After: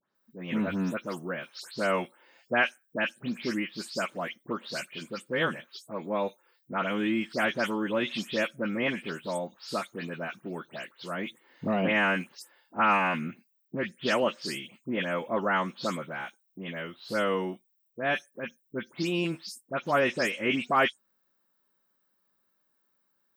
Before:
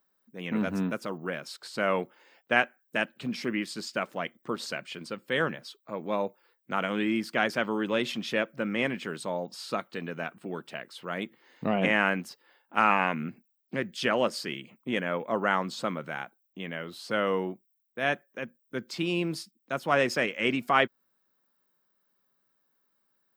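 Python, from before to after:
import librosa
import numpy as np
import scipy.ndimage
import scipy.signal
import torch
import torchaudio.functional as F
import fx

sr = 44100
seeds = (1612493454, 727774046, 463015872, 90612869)

y = fx.spec_delay(x, sr, highs='late', ms=151)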